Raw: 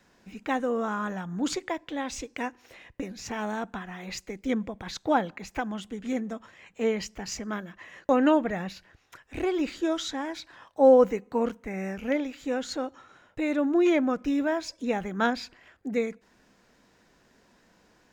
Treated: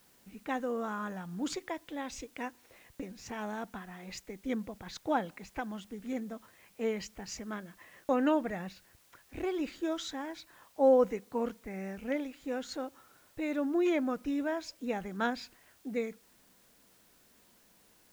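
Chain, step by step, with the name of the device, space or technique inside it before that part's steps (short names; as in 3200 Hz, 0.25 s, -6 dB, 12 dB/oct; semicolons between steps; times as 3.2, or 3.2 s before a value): plain cassette with noise reduction switched in (mismatched tape noise reduction decoder only; wow and flutter 12 cents; white noise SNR 30 dB); gain -6.5 dB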